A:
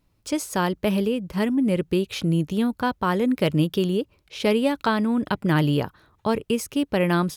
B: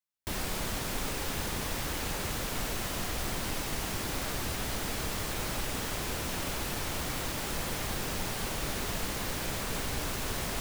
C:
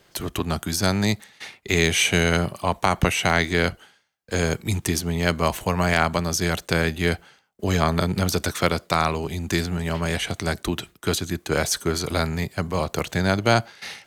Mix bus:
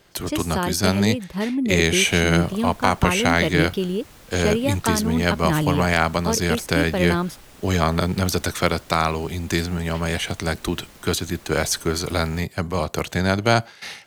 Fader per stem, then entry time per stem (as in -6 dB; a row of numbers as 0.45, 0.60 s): -1.5, -13.0, +1.0 dB; 0.00, 1.80, 0.00 s